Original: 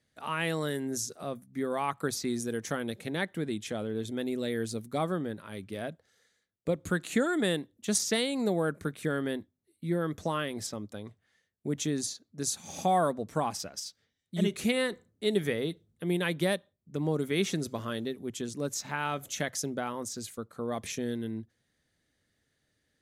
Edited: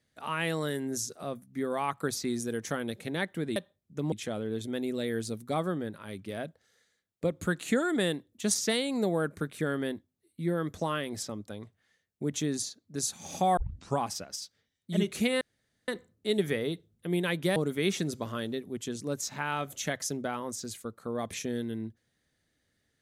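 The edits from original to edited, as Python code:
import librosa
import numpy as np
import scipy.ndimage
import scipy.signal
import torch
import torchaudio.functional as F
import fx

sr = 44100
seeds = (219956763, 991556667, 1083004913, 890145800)

y = fx.edit(x, sr, fx.tape_start(start_s=13.01, length_s=0.41),
    fx.insert_room_tone(at_s=14.85, length_s=0.47),
    fx.move(start_s=16.53, length_s=0.56, to_s=3.56), tone=tone)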